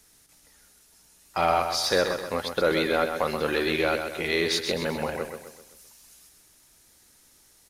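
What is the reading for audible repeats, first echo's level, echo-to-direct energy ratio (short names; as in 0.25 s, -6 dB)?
4, -7.0 dB, -6.0 dB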